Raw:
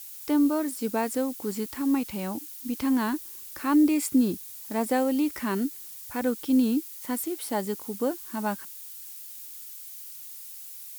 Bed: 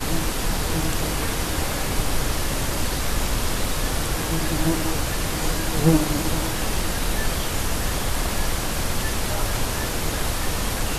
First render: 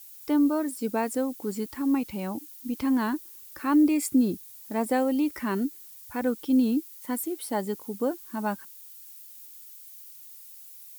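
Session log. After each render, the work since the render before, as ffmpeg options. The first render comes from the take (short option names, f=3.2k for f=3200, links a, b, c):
-af "afftdn=nr=7:nf=-43"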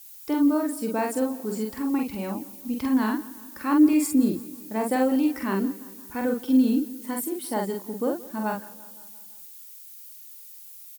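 -filter_complex "[0:a]asplit=2[a][b];[b]adelay=46,volume=-3dB[c];[a][c]amix=inputs=2:normalize=0,aecho=1:1:172|344|516|688|860:0.106|0.0625|0.0369|0.0218|0.0128"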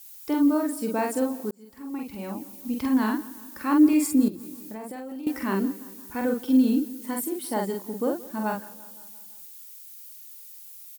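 -filter_complex "[0:a]asettb=1/sr,asplit=3[a][b][c];[a]atrim=end=4.284[d];[b]atrim=start=4.28:end=5.27,asetpts=PTS-STARTPTS,afade=t=in:d=0.004:c=qsin,afade=t=out:st=0.986:d=0.004:c=qsin,acompressor=threshold=-33dB:ratio=12:attack=3.2:release=140:knee=1:detection=peak[e];[c]atrim=start=5.266[f];[d][e]acrossfade=d=0.004:c1=hsin:c2=qsin[g];[g][f]acrossfade=d=0.004:c1=qsin:c2=hsin,asplit=2[h][i];[h]atrim=end=1.51,asetpts=PTS-STARTPTS,afade=t=out:st=1.506:d=0.004:c=hsin[j];[i]atrim=start=1.51,asetpts=PTS-STARTPTS,afade=t=in:d=1.13[k];[j][k]concat=n=2:v=0:a=1"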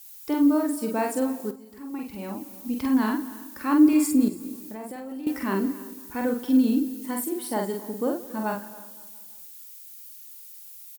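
-filter_complex "[0:a]asplit=2[a][b];[b]adelay=49,volume=-13.5dB[c];[a][c]amix=inputs=2:normalize=0,aecho=1:1:275:0.112"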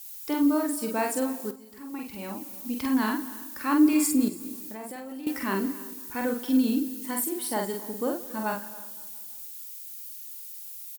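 -af "tiltshelf=f=1.1k:g=-3.5"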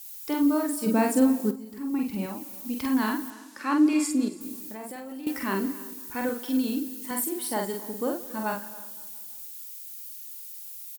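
-filter_complex "[0:a]asettb=1/sr,asplit=3[a][b][c];[a]atrim=end=0.864[d];[b]atrim=start=0.86:end=2.26,asetpts=PTS-STARTPTS,afade=t=in:d=0.004:c=qsin,afade=t=out:st=1.396:d=0.004:c=qsin,equalizer=f=220:w=0.87:g=11[e];[c]atrim=start=2.256[f];[d][e]acrossfade=d=0.004:c1=hsin:c2=qsin[g];[g][f]acrossfade=d=0.004:c1=qsin:c2=hsin,asettb=1/sr,asplit=3[h][i][j];[h]atrim=end=3.304[k];[i]atrim=start=3.3:end=4.41,asetpts=PTS-STARTPTS,afade=t=in:d=0.004:c=qsin,afade=t=out:st=1.106:d=0.004:c=qsin,highpass=220,lowpass=7.3k[l];[j]atrim=start=4.406[m];[k][l]acrossfade=d=0.004:c1=hsin:c2=qsin[n];[n][m]acrossfade=d=0.004:c1=qsin:c2=hsin,asettb=1/sr,asplit=3[o][p][q];[o]atrim=end=6.294[r];[p]atrim=start=6.29:end=7.11,asetpts=PTS-STARTPTS,afade=t=in:d=0.004:c=qsin,afade=t=out:st=0.816:d=0.004:c=qsin,highpass=f=280:p=1[s];[q]atrim=start=7.106[t];[r][s]acrossfade=d=0.004:c1=hsin:c2=qsin[u];[u][t]acrossfade=d=0.004:c1=qsin:c2=hsin"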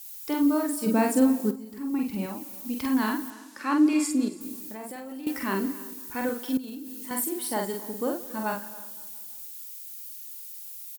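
-filter_complex "[0:a]asettb=1/sr,asplit=3[a][b][c];[a]atrim=end=6.574[d];[b]atrim=start=6.57:end=7.11,asetpts=PTS-STARTPTS,afade=t=in:d=0.004:c=qsin,afade=t=out:st=0.536:d=0.004:c=qsin,acompressor=threshold=-34dB:ratio=12:attack=3.2:release=140:knee=1:detection=peak[e];[c]atrim=start=7.106[f];[d][e]acrossfade=d=0.004:c1=hsin:c2=qsin[g];[g][f]acrossfade=d=0.004:c1=qsin:c2=hsin"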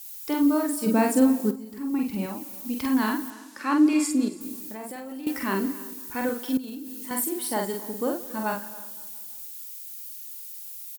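-af "volume=1.5dB"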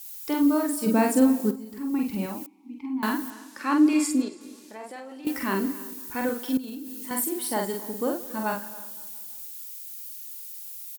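-filter_complex "[0:a]asettb=1/sr,asplit=3[a][b][c];[a]atrim=end=2.464[d];[b]atrim=start=2.46:end=3.03,asetpts=PTS-STARTPTS,afade=t=in:d=0.004:c=qsin,afade=t=out:st=0.566:d=0.004:c=qsin,asplit=3[e][f][g];[e]bandpass=f=300:t=q:w=8,volume=0dB[h];[f]bandpass=f=870:t=q:w=8,volume=-6dB[i];[g]bandpass=f=2.24k:t=q:w=8,volume=-9dB[j];[h][i][j]amix=inputs=3:normalize=0[k];[c]atrim=start=3.026[l];[d][k]acrossfade=d=0.004:c1=hsin:c2=qsin[m];[m][l]acrossfade=d=0.004:c1=qsin:c2=hsin,asettb=1/sr,asplit=3[n][o][p];[n]atrim=end=4.224[q];[o]atrim=start=4.22:end=5.25,asetpts=PTS-STARTPTS,afade=t=in:d=0.004:c=qsin,afade=t=out:st=1.026:d=0.004:c=qsin,highpass=360,lowpass=6.2k[r];[p]atrim=start=5.246[s];[q][r]acrossfade=d=0.004:c1=hsin:c2=qsin[t];[t][s]acrossfade=d=0.004:c1=qsin:c2=hsin"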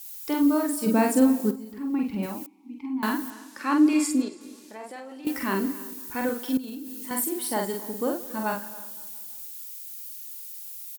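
-filter_complex "[0:a]asettb=1/sr,asplit=3[a][b][c];[a]atrim=end=1.724[d];[b]atrim=start=1.72:end=2.23,asetpts=PTS-STARTPTS,afade=t=in:d=0.004:c=qsin,afade=t=out:st=0.506:d=0.004:c=qsin,acrossover=split=4000[e][f];[f]acompressor=threshold=-56dB:ratio=4:attack=1:release=60[g];[e][g]amix=inputs=2:normalize=0[h];[c]atrim=start=2.226[i];[d][h]acrossfade=d=0.004:c1=hsin:c2=qsin[j];[j][i]acrossfade=d=0.004:c1=qsin:c2=hsin"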